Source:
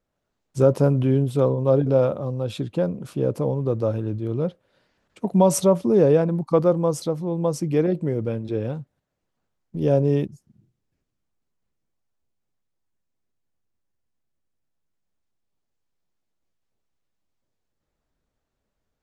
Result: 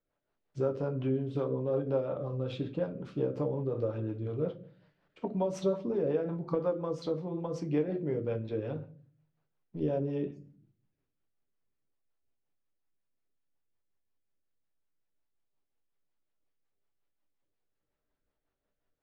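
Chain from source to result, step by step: compression, threshold -21 dBFS, peak gain reduction 10 dB; bass shelf 290 Hz -10.5 dB; simulated room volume 39 m³, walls mixed, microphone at 0.36 m; rotary cabinet horn 5.5 Hz; distance through air 210 m; trim -1.5 dB

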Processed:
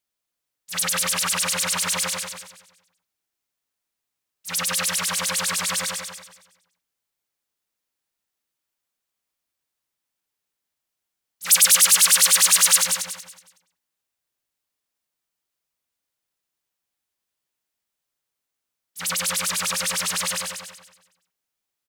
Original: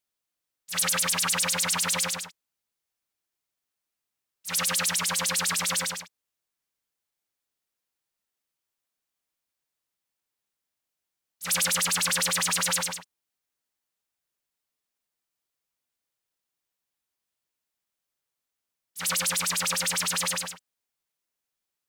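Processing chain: 11.46–12.84 s: tilt EQ +3 dB/octave; on a send: feedback delay 185 ms, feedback 29%, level -7 dB; on the sum: trim +1.5 dB

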